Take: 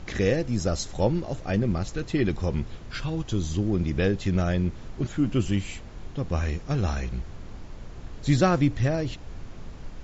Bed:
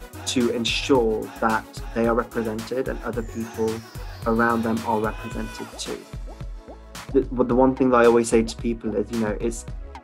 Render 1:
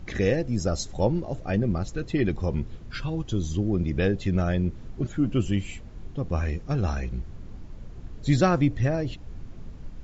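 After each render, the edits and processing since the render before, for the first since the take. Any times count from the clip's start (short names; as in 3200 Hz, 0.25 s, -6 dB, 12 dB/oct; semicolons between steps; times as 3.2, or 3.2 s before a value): denoiser 8 dB, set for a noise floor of -41 dBFS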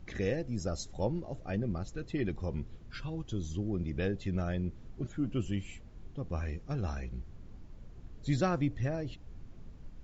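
gain -9 dB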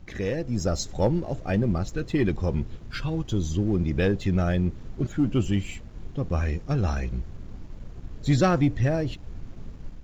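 sample leveller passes 1; AGC gain up to 6.5 dB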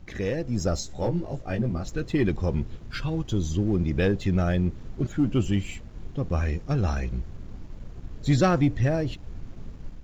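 0.79–1.83 detuned doubles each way 27 cents -> 14 cents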